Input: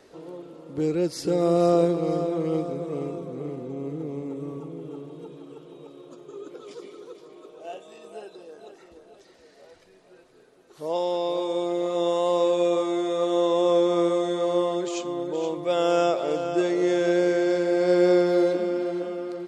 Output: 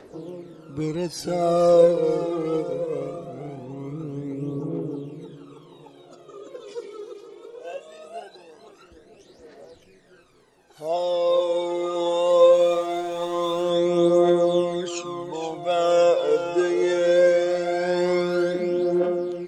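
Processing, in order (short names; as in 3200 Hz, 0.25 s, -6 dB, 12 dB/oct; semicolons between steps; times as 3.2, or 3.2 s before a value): phaser 0.21 Hz, delay 2.5 ms, feedback 65%; 12.5–13.7 backlash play -37 dBFS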